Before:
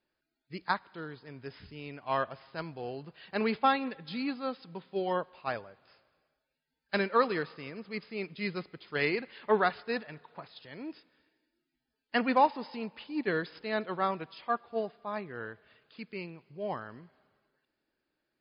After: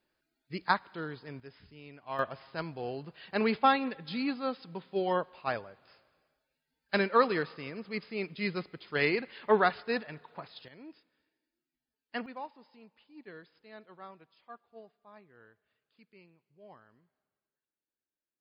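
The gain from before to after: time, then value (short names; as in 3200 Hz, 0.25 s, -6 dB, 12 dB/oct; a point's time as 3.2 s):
+3 dB
from 1.4 s -7 dB
from 2.19 s +1.5 dB
from 10.68 s -8 dB
from 12.26 s -18 dB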